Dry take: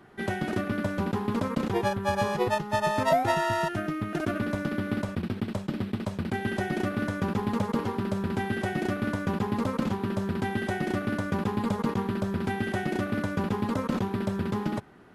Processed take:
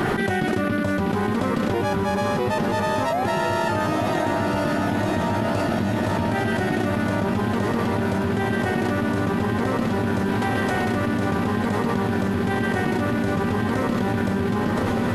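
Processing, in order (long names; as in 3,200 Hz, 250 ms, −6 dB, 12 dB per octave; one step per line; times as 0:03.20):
0:10.29–0:10.92: high-pass filter 450 Hz 24 dB per octave
feedback delay with all-pass diffusion 999 ms, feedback 70%, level −5 dB
envelope flattener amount 100%
level −3.5 dB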